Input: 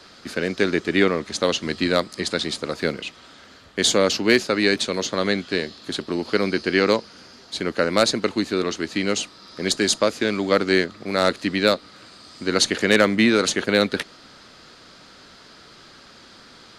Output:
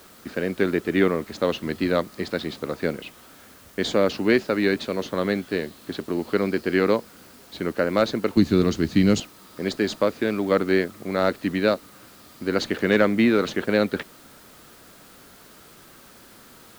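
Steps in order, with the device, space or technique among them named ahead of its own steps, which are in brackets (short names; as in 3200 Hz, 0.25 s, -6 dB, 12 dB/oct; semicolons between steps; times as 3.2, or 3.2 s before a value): 8.37–9.2 tone controls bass +15 dB, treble +14 dB; cassette deck with a dirty head (tape spacing loss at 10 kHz 26 dB; wow and flutter; white noise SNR 28 dB)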